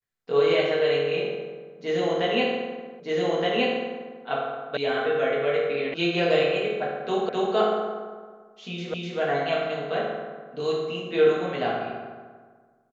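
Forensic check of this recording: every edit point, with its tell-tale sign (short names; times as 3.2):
3 repeat of the last 1.22 s
4.77 sound cut off
5.94 sound cut off
7.29 repeat of the last 0.26 s
8.94 repeat of the last 0.25 s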